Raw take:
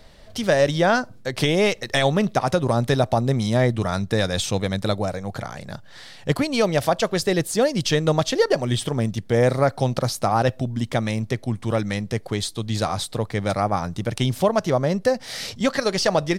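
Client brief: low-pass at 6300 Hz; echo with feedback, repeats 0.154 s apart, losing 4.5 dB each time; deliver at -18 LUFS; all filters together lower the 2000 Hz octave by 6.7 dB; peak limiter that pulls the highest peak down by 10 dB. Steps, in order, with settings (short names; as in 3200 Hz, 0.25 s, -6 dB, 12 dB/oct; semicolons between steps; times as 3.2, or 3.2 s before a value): LPF 6300 Hz; bell 2000 Hz -8.5 dB; limiter -18 dBFS; feedback echo 0.154 s, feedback 60%, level -4.5 dB; gain +8 dB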